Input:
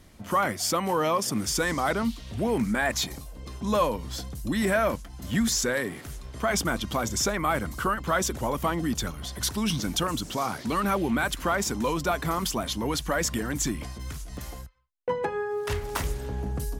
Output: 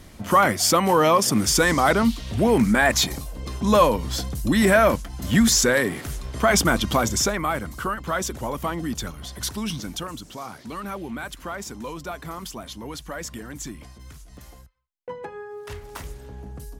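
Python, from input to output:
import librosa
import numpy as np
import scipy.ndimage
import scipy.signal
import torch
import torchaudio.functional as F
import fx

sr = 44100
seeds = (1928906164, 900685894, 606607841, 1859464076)

y = fx.gain(x, sr, db=fx.line((6.95, 7.5), (7.6, -0.5), (9.53, -0.5), (10.25, -7.0)))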